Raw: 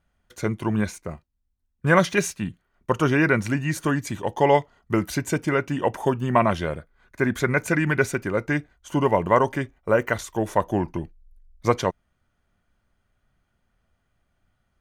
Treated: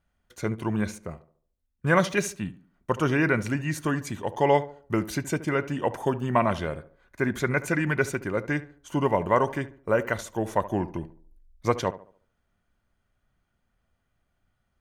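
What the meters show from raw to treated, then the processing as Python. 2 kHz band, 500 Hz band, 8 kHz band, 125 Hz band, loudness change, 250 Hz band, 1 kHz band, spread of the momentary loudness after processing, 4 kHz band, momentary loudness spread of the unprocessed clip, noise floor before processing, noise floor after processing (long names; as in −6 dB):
−3.5 dB, −3.5 dB, −3.5 dB, −3.5 dB, −3.5 dB, −3.5 dB, −3.5 dB, 11 LU, −3.5 dB, 11 LU, −73 dBFS, −76 dBFS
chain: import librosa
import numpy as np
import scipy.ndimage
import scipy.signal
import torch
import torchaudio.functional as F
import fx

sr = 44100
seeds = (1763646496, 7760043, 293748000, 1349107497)

y = fx.echo_tape(x, sr, ms=72, feedback_pct=44, wet_db=-13.0, lp_hz=1300.0, drive_db=8.0, wow_cents=17)
y = F.gain(torch.from_numpy(y), -3.5).numpy()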